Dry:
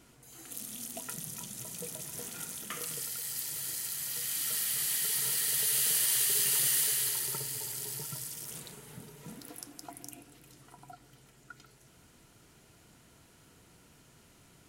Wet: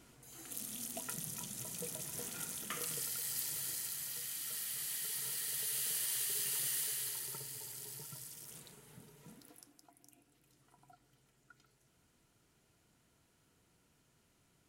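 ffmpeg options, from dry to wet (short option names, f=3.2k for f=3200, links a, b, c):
-af "volume=4.5dB,afade=t=out:st=3.44:d=0.95:silence=0.446684,afade=t=out:st=9.18:d=0.73:silence=0.316228,afade=t=in:st=9.91:d=0.88:silence=0.473151"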